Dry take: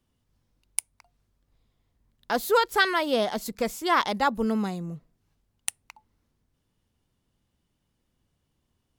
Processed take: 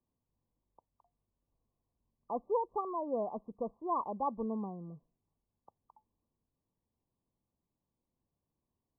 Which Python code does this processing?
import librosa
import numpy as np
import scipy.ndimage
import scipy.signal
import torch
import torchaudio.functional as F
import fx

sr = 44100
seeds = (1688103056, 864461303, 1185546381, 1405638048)

y = fx.brickwall_lowpass(x, sr, high_hz=1200.0)
y = fx.low_shelf(y, sr, hz=130.0, db=-7.5)
y = y * librosa.db_to_amplitude(-9.0)